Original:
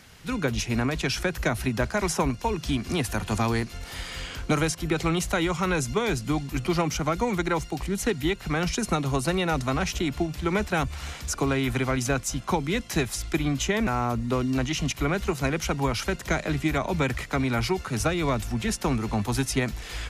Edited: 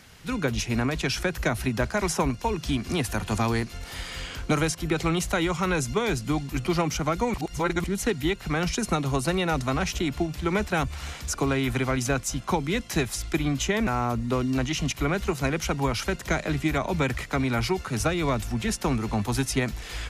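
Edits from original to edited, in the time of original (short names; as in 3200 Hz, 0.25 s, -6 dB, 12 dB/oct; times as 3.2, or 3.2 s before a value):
7.34–7.84 reverse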